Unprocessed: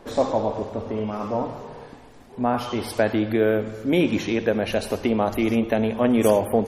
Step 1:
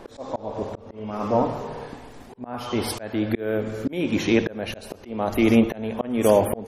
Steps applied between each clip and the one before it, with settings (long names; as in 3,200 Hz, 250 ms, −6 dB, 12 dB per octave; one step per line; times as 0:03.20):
volume swells 466 ms
level +5 dB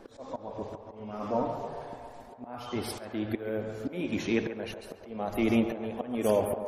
spectral magnitudes quantised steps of 15 dB
feedback echo with a band-pass in the loop 138 ms, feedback 75%, band-pass 790 Hz, level −7.5 dB
level −8 dB